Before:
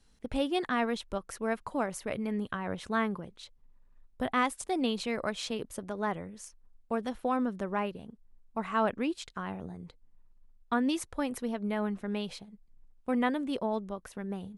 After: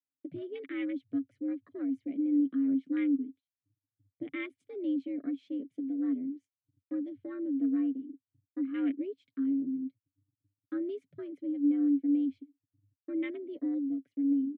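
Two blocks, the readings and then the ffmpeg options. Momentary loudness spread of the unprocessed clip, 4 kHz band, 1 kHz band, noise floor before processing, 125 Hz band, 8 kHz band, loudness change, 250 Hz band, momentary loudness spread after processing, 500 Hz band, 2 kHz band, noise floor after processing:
13 LU, under -15 dB, under -20 dB, -63 dBFS, under -15 dB, under -35 dB, 0.0 dB, +4.0 dB, 13 LU, -8.5 dB, -11.0 dB, under -85 dBFS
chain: -filter_complex "[0:a]afwtdn=0.0224,afreqshift=84,highpass=85,agate=range=-23dB:threshold=-57dB:ratio=16:detection=peak,asplit=3[a][b][c];[a]bandpass=f=270:t=q:w=8,volume=0dB[d];[b]bandpass=f=2.29k:t=q:w=8,volume=-6dB[e];[c]bandpass=f=3.01k:t=q:w=8,volume=-9dB[f];[d][e][f]amix=inputs=3:normalize=0,tiltshelf=f=970:g=3.5,aecho=1:1:7.2:0.39,volume=6.5dB"

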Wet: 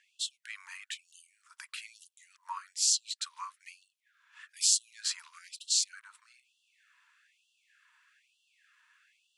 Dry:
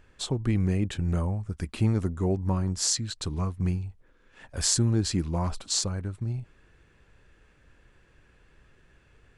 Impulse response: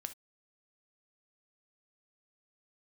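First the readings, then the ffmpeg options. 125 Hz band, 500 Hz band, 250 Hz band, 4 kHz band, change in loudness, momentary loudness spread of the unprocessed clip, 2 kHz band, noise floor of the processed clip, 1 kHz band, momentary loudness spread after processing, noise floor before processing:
under -40 dB, under -40 dB, under -40 dB, 0.0 dB, -3.5 dB, 9 LU, -2.0 dB, -78 dBFS, -6.0 dB, 20 LU, -61 dBFS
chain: -af "afftfilt=real='re*gte(b*sr/1024,860*pow(2700/860,0.5+0.5*sin(2*PI*1.1*pts/sr)))':imag='im*gte(b*sr/1024,860*pow(2700/860,0.5+0.5*sin(2*PI*1.1*pts/sr)))':win_size=1024:overlap=0.75"

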